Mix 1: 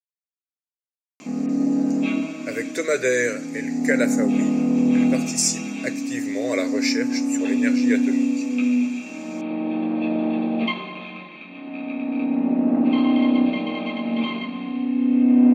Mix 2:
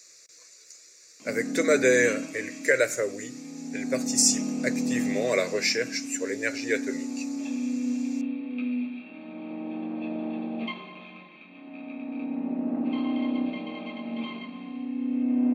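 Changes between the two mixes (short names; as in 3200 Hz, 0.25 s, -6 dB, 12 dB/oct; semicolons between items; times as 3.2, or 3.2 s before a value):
speech: entry -1.20 s; background -9.5 dB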